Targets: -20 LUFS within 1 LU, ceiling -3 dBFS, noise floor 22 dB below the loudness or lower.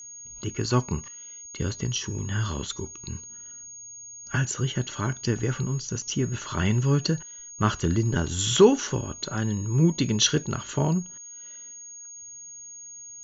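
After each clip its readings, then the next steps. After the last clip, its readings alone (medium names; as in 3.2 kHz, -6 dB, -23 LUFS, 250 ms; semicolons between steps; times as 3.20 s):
steady tone 6.6 kHz; tone level -40 dBFS; loudness -26.0 LUFS; peak level -5.0 dBFS; loudness target -20.0 LUFS
-> band-stop 6.6 kHz, Q 30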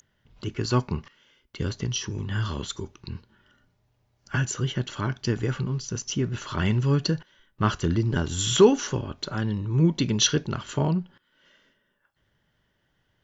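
steady tone not found; loudness -26.0 LUFS; peak level -5.0 dBFS; loudness target -20.0 LUFS
-> trim +6 dB; peak limiter -3 dBFS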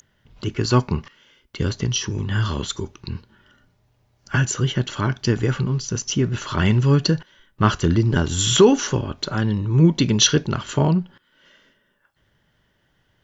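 loudness -20.5 LUFS; peak level -3.0 dBFS; noise floor -66 dBFS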